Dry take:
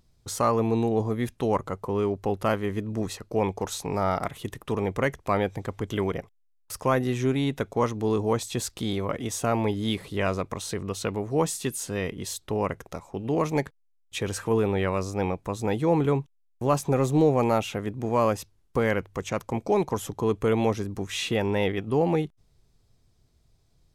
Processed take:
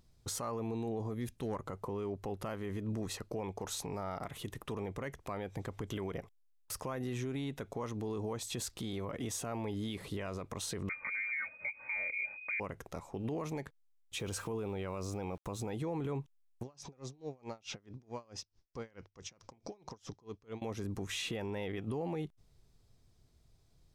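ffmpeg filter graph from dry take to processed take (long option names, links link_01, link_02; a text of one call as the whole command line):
ffmpeg -i in.wav -filter_complex "[0:a]asettb=1/sr,asplit=3[link_01][link_02][link_03];[link_01]atrim=end=1.144[link_04];[link_02]atrim=start=1.14:end=1.55,asetpts=PTS-STARTPTS,afade=type=in:duration=0.004:curve=qsin,afade=type=out:start_time=0.406:duration=0.004:curve=qsin,equalizer=frequency=1100:width_type=o:width=2.8:gain=-6.5,asoftclip=type=hard:threshold=-20dB[link_05];[link_03]atrim=start=1.546[link_06];[link_04][link_05]acrossfade=duration=0.004:curve1=hsin:curve2=qsin[link_07];[link_07][link_06]acrossfade=duration=0.004:curve1=qsin:curve2=hsin,asettb=1/sr,asplit=3[link_08][link_09][link_10];[link_08]atrim=end=10.894[link_11];[link_09]atrim=start=10.89:end=12.6,asetpts=PTS-STARTPTS,afade=type=in:duration=0.004:curve=qsin,afade=type=out:start_time=1.706:duration=0.004:curve=qsin,asubboost=boost=7.5:cutoff=240,aecho=1:1:3.1:0.99,atrim=end_sample=75411,lowpass=frequency=2100:width_type=q:width=0.5098,lowpass=frequency=2100:width_type=q:width=0.6013,lowpass=frequency=2100:width_type=q:width=0.9,lowpass=frequency=2100:width_type=q:width=2.563,afreqshift=-2500[link_12];[link_10]atrim=start=12.596[link_13];[link_11][link_12]acrossfade=duration=0.004:curve1=hsin:curve2=qsin[link_14];[link_14][link_13]acrossfade=duration=0.004:curve1=qsin:curve2=hsin,asettb=1/sr,asplit=3[link_15][link_16][link_17];[link_15]atrim=end=14.164[link_18];[link_16]atrim=start=14.16:end=15.7,asetpts=PTS-STARTPTS,afade=type=in:duration=0.004:curve=qsin,afade=type=out:start_time=1.536:duration=0.004:curve=qsin,equalizer=frequency=1800:width_type=o:width=0.22:gain=-8.5,aeval=exprs='val(0)*gte(abs(val(0)),0.00335)':channel_layout=same[link_19];[link_17]atrim=start=15.696[link_20];[link_18][link_19]acrossfade=duration=0.004:curve1=hsin:curve2=qsin[link_21];[link_21][link_20]acrossfade=duration=0.004:curve1=qsin:curve2=hsin,asettb=1/sr,asplit=3[link_22][link_23][link_24];[link_22]atrim=end=16.634[link_25];[link_23]atrim=start=16.63:end=20.62,asetpts=PTS-STARTPTS,afade=type=in:duration=0.004:curve=qsin,afade=type=out:start_time=3.986:duration=0.004:curve=qsin,acompressor=threshold=-36dB:ratio=4:attack=3.2:release=140:knee=1:detection=peak,lowpass=frequency=5400:width_type=q:width=3.9,aeval=exprs='val(0)*pow(10,-28*(0.5-0.5*cos(2*PI*4.6*n/s))/20)':channel_layout=same[link_26];[link_24]atrim=start=20.616[link_27];[link_25][link_26]acrossfade=duration=0.004:curve1=hsin:curve2=qsin[link_28];[link_28][link_27]acrossfade=duration=0.004:curve1=qsin:curve2=hsin,acompressor=threshold=-28dB:ratio=6,alimiter=level_in=3dB:limit=-24dB:level=0:latency=1:release=39,volume=-3dB,volume=-2.5dB" out.wav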